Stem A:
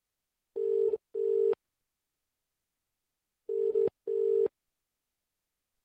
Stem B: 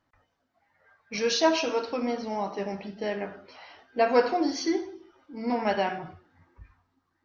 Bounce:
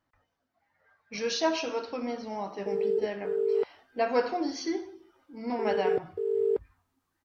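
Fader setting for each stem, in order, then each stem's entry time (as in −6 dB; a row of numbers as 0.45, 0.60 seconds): +0.5, −4.5 decibels; 2.10, 0.00 seconds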